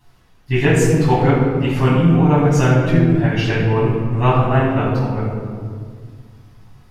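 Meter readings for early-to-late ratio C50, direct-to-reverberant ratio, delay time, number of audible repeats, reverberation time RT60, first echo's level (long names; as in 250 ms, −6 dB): 0.5 dB, −9.0 dB, no echo audible, no echo audible, 1.9 s, no echo audible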